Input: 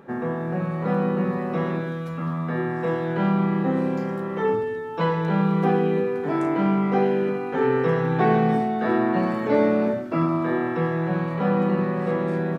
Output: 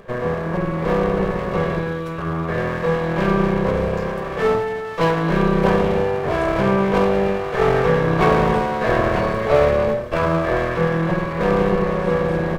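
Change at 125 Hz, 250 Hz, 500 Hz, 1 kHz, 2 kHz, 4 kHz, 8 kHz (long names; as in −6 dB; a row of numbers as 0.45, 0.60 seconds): +3.5 dB, +0.5 dB, +5.5 dB, +4.5 dB, +7.0 dB, +9.5 dB, can't be measured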